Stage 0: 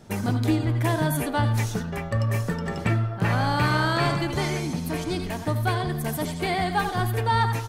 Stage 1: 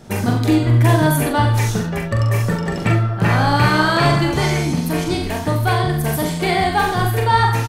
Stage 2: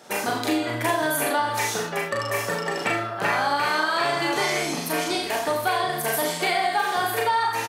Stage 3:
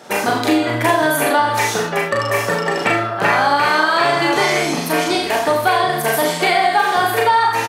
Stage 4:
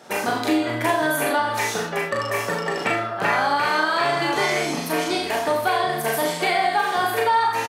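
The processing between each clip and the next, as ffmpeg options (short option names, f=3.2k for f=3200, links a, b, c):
-filter_complex "[0:a]acontrast=65,asplit=2[a][b];[b]aecho=0:1:42|68:0.631|0.282[c];[a][c]amix=inputs=2:normalize=0"
-filter_complex "[0:a]highpass=500,asplit=2[a][b];[b]adelay=35,volume=-4.5dB[c];[a][c]amix=inputs=2:normalize=0,acompressor=threshold=-19dB:ratio=10"
-af "highshelf=f=4.5k:g=-5.5,volume=8.5dB"
-filter_complex "[0:a]asplit=2[a][b];[b]adelay=22,volume=-12dB[c];[a][c]amix=inputs=2:normalize=0,volume=-6dB"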